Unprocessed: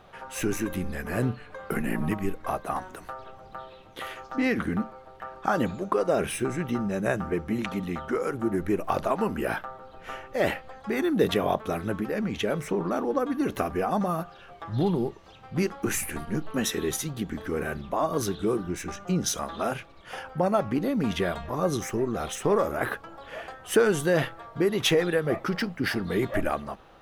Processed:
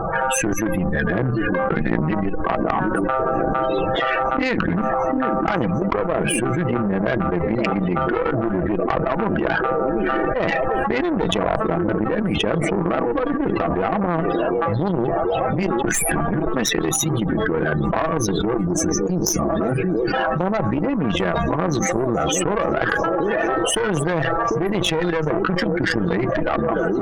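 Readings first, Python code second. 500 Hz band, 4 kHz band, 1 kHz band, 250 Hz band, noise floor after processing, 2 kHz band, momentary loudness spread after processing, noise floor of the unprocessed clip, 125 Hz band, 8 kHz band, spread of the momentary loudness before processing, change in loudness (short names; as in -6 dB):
+7.0 dB, +7.0 dB, +9.5 dB, +7.5 dB, -23 dBFS, +9.0 dB, 1 LU, -49 dBFS, +8.5 dB, +9.5 dB, 14 LU, +7.5 dB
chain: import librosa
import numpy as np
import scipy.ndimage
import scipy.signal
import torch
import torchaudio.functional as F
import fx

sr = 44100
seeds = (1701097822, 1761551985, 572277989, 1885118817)

p1 = fx.spec_box(x, sr, start_s=18.61, length_s=1.53, low_hz=450.0, high_hz=4500.0, gain_db=-11)
p2 = p1 + 0.44 * np.pad(p1, (int(6.1 * sr / 1000.0), 0))[:len(p1)]
p3 = fx.level_steps(p2, sr, step_db=14)
p4 = p2 + (p3 * 10.0 ** (0.5 / 20.0))
p5 = fx.spec_topn(p4, sr, count=32)
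p6 = fx.echo_stepped(p5, sr, ms=745, hz=300.0, octaves=0.7, feedback_pct=70, wet_db=-11)
p7 = fx.cheby_harmonics(p6, sr, harmonics=(2, 3, 7, 8), levels_db=(-6, -22, -25, -38), full_scale_db=-6.5)
p8 = fx.env_flatten(p7, sr, amount_pct=100)
y = p8 * 10.0 ** (-6.0 / 20.0)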